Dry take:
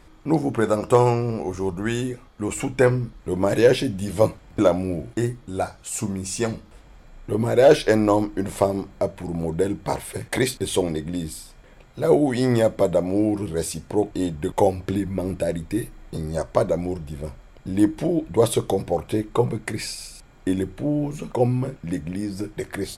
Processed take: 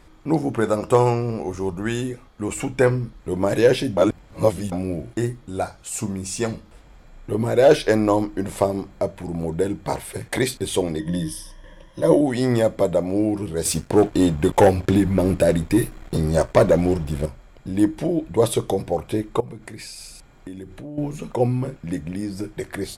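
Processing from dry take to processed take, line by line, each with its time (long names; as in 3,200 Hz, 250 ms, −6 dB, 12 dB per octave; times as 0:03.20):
0:03.97–0:04.72: reverse
0:10.99–0:12.21: EQ curve with evenly spaced ripples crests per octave 1.2, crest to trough 16 dB
0:13.65–0:17.26: leveller curve on the samples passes 2
0:19.40–0:20.98: downward compressor 4 to 1, threshold −34 dBFS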